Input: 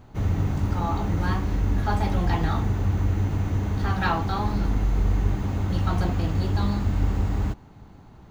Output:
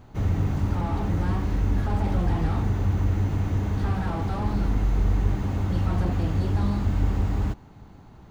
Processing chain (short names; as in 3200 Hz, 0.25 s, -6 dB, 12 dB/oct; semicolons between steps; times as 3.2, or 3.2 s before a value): slew limiter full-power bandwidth 23 Hz